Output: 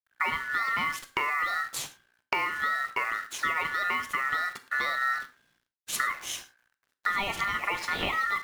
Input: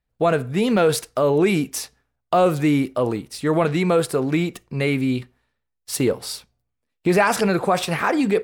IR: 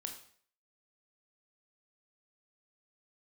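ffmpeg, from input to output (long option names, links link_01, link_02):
-filter_complex "[0:a]aemphasis=mode=reproduction:type=cd,acompressor=threshold=-28dB:ratio=20,acrusher=bits=9:dc=4:mix=0:aa=0.000001,aeval=exprs='val(0)*sin(2*PI*1600*n/s)':channel_layout=same,asplit=2[link_01][link_02];[1:a]atrim=start_sample=2205,afade=type=out:start_time=0.17:duration=0.01,atrim=end_sample=7938[link_03];[link_02][link_03]afir=irnorm=-1:irlink=0,volume=1.5dB[link_04];[link_01][link_04]amix=inputs=2:normalize=0"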